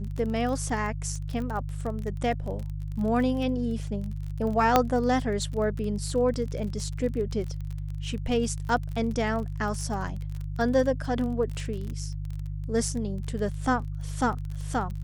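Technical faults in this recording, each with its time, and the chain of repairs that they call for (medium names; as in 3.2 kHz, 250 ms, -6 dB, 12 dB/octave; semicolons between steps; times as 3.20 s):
crackle 29 per s -33 dBFS
hum 50 Hz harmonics 3 -33 dBFS
4.76 s: pop -5 dBFS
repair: de-click; de-hum 50 Hz, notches 3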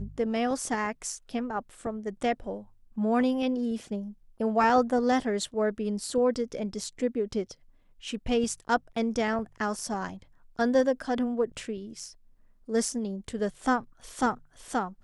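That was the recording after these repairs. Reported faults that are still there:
nothing left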